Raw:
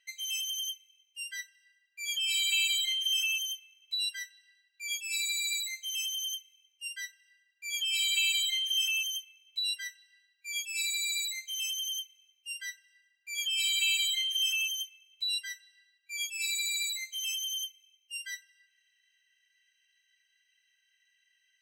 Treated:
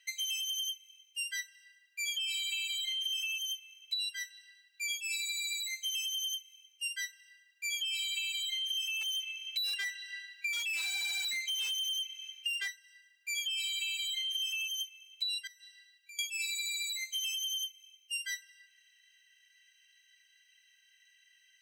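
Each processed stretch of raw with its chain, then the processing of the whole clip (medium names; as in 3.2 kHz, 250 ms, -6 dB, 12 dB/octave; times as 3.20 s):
9.01–12.68 s: high-pass 1.5 kHz 24 dB/octave + treble shelf 2.4 kHz -11.5 dB + overdrive pedal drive 28 dB, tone 7.3 kHz, clips at -24.5 dBFS
15.47–16.19 s: high-pass 1.5 kHz + compression 10:1, threshold -55 dBFS
whole clip: high-pass 1.5 kHz 6 dB/octave; dynamic bell 2.7 kHz, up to +4 dB, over -41 dBFS, Q 0.86; compression 10:1, threshold -41 dBFS; trim +7.5 dB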